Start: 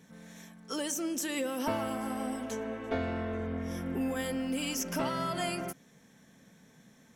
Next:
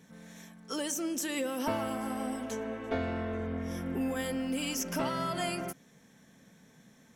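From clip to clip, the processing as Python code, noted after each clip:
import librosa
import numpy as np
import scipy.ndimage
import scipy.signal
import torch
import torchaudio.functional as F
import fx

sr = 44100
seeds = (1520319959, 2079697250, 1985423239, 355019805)

y = x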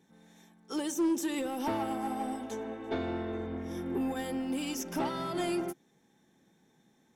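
y = fx.small_body(x, sr, hz=(350.0, 810.0, 3600.0), ring_ms=45, db=13)
y = 10.0 ** (-23.0 / 20.0) * np.tanh(y / 10.0 ** (-23.0 / 20.0))
y = fx.upward_expand(y, sr, threshold_db=-46.0, expansion=1.5)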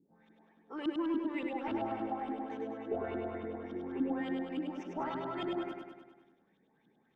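y = fx.filter_lfo_lowpass(x, sr, shape='saw_up', hz=3.5, low_hz=260.0, high_hz=3300.0, q=4.0)
y = fx.echo_feedback(y, sr, ms=101, feedback_pct=59, wet_db=-4)
y = y * 10.0 ** (-9.0 / 20.0)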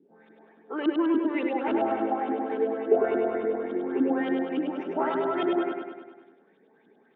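y = fx.cabinet(x, sr, low_hz=230.0, low_slope=12, high_hz=3400.0, hz=(240.0, 420.0, 650.0, 1500.0), db=(3, 10, 4, 5))
y = y * 10.0 ** (7.5 / 20.0)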